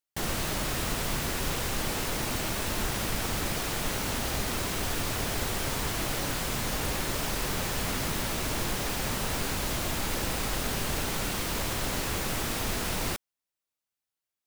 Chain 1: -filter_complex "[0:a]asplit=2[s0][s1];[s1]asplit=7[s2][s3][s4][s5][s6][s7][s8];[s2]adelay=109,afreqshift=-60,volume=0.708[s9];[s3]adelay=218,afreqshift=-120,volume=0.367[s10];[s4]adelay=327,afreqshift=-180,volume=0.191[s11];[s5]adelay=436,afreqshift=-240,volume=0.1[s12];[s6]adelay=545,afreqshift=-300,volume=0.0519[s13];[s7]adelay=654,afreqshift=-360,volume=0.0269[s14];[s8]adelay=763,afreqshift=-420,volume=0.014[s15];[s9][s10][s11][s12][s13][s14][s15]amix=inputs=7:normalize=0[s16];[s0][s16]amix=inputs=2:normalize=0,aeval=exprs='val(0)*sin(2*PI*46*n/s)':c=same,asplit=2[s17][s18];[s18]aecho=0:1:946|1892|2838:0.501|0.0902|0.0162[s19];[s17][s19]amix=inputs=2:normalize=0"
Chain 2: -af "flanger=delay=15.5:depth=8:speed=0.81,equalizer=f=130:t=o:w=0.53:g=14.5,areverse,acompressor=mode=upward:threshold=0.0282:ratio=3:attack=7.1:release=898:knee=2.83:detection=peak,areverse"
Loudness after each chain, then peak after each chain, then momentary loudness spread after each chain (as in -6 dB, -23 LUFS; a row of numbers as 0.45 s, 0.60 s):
-30.0 LUFS, -31.0 LUFS; -13.5 dBFS, -16.5 dBFS; 1 LU, 2 LU